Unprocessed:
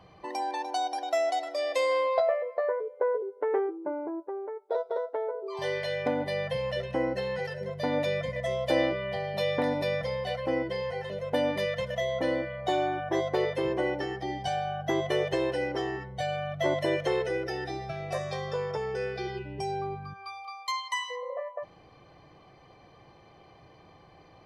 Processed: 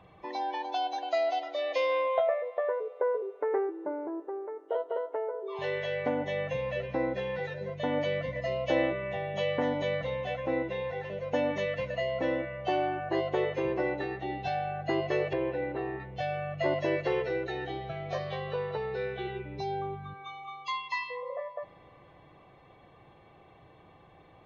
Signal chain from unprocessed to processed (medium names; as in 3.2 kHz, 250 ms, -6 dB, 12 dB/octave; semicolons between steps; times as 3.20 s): knee-point frequency compression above 2.1 kHz 1.5:1; 15.33–16.00 s: distance through air 440 m; reverberation RT60 4.8 s, pre-delay 48 ms, DRR 18 dB; trim -1.5 dB